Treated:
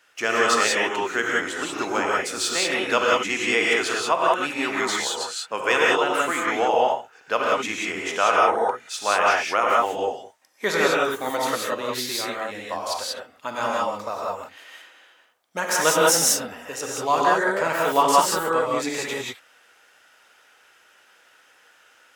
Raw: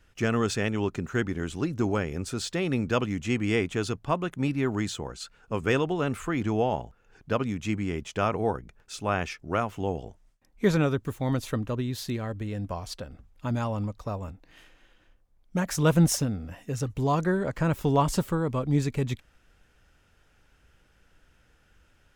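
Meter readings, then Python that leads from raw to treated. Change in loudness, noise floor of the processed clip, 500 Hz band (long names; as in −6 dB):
+6.5 dB, −57 dBFS, +6.5 dB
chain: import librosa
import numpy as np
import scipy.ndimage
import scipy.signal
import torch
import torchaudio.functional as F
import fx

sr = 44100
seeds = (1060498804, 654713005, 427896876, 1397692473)

y = scipy.signal.sosfilt(scipy.signal.butter(2, 670.0, 'highpass', fs=sr, output='sos'), x)
y = fx.rev_gated(y, sr, seeds[0], gate_ms=210, shape='rising', drr_db=-3.5)
y = y * 10.0 ** (7.5 / 20.0)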